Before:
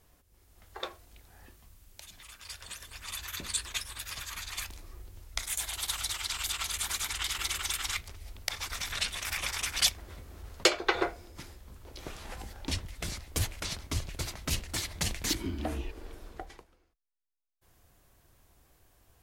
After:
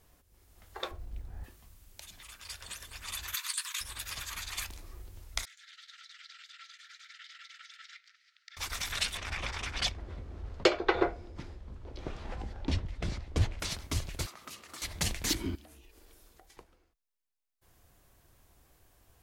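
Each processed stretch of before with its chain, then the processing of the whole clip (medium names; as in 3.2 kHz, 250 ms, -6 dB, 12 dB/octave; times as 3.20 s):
0.91–1.44 s: tilt EQ -3.5 dB/octave + modulation noise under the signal 34 dB
3.34–3.81 s: compressor with a negative ratio -34 dBFS, ratio -0.5 + brick-wall FIR high-pass 920 Hz + treble shelf 9.4 kHz +7.5 dB
5.45–8.57 s: compression 4:1, threshold -40 dBFS + rippled Chebyshev high-pass 1.3 kHz, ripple 6 dB + distance through air 190 m
9.17–13.60 s: low-pass 4.9 kHz + tilt shelf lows +4.5 dB
14.26–14.82 s: high-pass 240 Hz + peaking EQ 1.2 kHz +14.5 dB 0.25 oct + compression 3:1, threshold -47 dBFS
15.55–16.57 s: pre-emphasis filter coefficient 0.8 + compression, threshold -52 dBFS
whole clip: none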